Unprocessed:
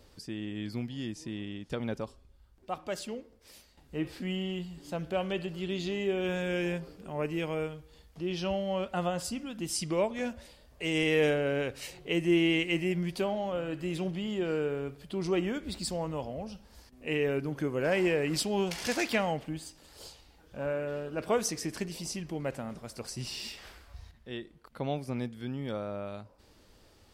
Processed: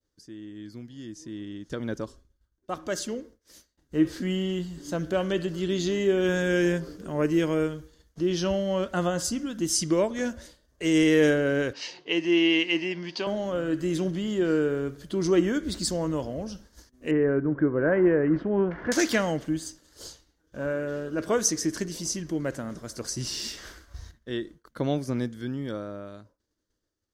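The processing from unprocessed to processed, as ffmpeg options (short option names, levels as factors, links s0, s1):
-filter_complex "[0:a]asettb=1/sr,asplit=3[s0][s1][s2];[s0]atrim=end=11.734[s3];[s1]atrim=start=11.73:end=13.27,asetpts=PTS-STARTPTS,afade=t=in:d=0.004:c=qsin,afade=t=out:st=1.536:d=0.004:c=qsin,highpass=330,equalizer=f=380:t=q:w=4:g=-5,equalizer=f=560:t=q:w=4:g=-5,equalizer=f=900:t=q:w=4:g=8,equalizer=f=1400:t=q:w=4:g=-5,equalizer=f=2700:t=q:w=4:g=8,equalizer=f=4800:t=q:w=4:g=7,lowpass=f=5100:w=0.5412,lowpass=f=5100:w=1.3066[s4];[s2]atrim=start=13.266[s5];[s3][s4]acrossfade=d=0.004:c1=hsin:c2=qsin[s6];[s6][s5]acrossfade=d=0.004:c1=qsin:c2=hsin,asettb=1/sr,asplit=3[s7][s8][s9];[s7]atrim=end=17.114[s10];[s8]atrim=start=17.11:end=18.92,asetpts=PTS-STARTPTS,afade=t=in:d=0.004:c=qsin,afade=t=out:st=1.806:d=0.004:c=qsin,lowpass=f=1700:w=0.5412,lowpass=f=1700:w=1.3066[s11];[s9]atrim=start=18.916[s12];[s10][s11]acrossfade=d=0.004:c1=hsin:c2=qsin[s13];[s13][s12]acrossfade=d=0.004:c1=qsin:c2=hsin,agate=range=0.0224:threshold=0.00398:ratio=3:detection=peak,equalizer=f=315:t=o:w=0.33:g=7,equalizer=f=800:t=o:w=0.33:g=-8,equalizer=f=1600:t=o:w=0.33:g=5,equalizer=f=2500:t=o:w=0.33:g=-9,equalizer=f=6300:t=o:w=0.33:g=9,dynaudnorm=f=220:g=17:m=5.96,volume=0.376"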